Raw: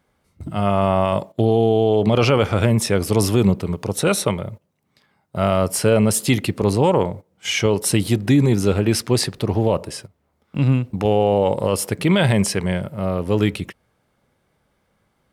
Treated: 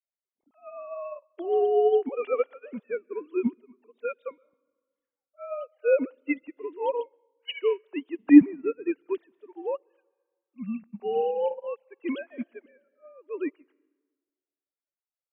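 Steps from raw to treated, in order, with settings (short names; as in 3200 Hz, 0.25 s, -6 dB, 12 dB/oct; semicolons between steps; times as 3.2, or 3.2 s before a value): sine-wave speech; plate-style reverb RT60 1.6 s, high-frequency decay 0.55×, pre-delay 0.105 s, DRR 16 dB; upward expander 2.5:1, over -29 dBFS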